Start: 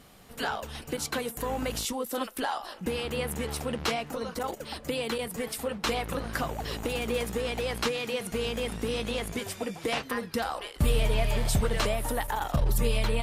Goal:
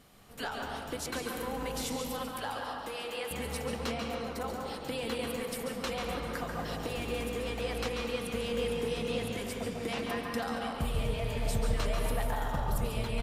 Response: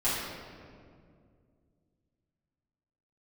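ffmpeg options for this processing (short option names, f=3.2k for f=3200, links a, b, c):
-filter_complex "[0:a]asettb=1/sr,asplit=3[a][b][c];[a]atrim=end=1.964[d];[b]atrim=start=1.96:end=3.31,asetpts=PTS-STARTPTS,afade=t=in:d=0.004:c=qsin,afade=t=out:st=1.346:d=0.004:c=qsin,highpass=500[e];[c]atrim=start=3.306[f];[d][e]acrossfade=d=0.004:c1=hsin:c2=qsin[g];[g][f]acrossfade=d=0.004:c1=qsin:c2=hsin,alimiter=limit=-19.5dB:level=0:latency=1:release=496,asplit=2[h][i];[i]adelay=139.9,volume=-7dB,highshelf=f=4k:g=-3.15[j];[h][j]amix=inputs=2:normalize=0,asplit=2[k][l];[1:a]atrim=start_sample=2205,highshelf=f=10k:g=-12,adelay=135[m];[l][m]afir=irnorm=-1:irlink=0,volume=-11.5dB[n];[k][n]amix=inputs=2:normalize=0,volume=-5.5dB"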